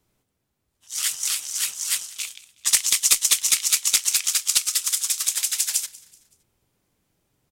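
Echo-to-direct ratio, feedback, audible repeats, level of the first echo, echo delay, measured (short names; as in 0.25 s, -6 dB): -21.0 dB, 40%, 2, -21.5 dB, 0.189 s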